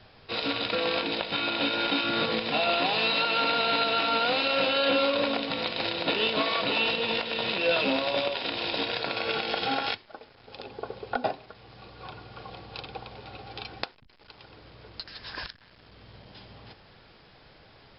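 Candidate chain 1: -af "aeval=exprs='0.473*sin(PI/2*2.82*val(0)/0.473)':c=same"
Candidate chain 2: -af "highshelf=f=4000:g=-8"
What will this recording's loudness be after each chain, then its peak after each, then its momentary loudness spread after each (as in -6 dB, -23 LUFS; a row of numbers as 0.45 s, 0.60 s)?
-14.5 LUFS, -28.0 LUFS; -6.5 dBFS, -9.0 dBFS; 18 LU, 18 LU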